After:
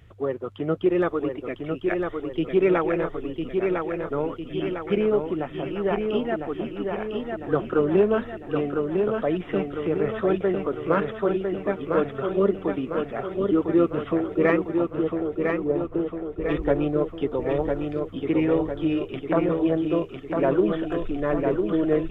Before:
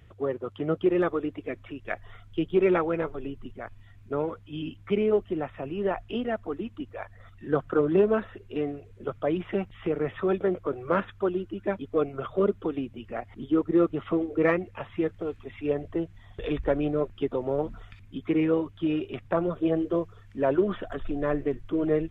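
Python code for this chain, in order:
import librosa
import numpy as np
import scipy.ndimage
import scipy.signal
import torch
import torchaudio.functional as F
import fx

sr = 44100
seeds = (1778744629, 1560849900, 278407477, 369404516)

p1 = fx.lowpass(x, sr, hz=1100.0, slope=24, at=(14.77, 16.49))
p2 = p1 + fx.echo_feedback(p1, sr, ms=1003, feedback_pct=55, wet_db=-4.5, dry=0)
y = p2 * 10.0 ** (2.0 / 20.0)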